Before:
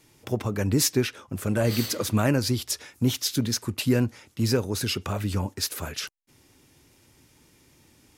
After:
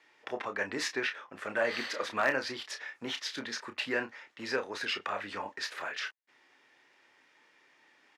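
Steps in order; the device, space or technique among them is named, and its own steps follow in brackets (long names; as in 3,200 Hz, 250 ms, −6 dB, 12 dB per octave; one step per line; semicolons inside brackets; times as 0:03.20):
megaphone (band-pass filter 690–2,800 Hz; parametric band 1,800 Hz +8 dB 0.3 octaves; hard clipping −19 dBFS, distortion −26 dB; double-tracking delay 30 ms −8 dB)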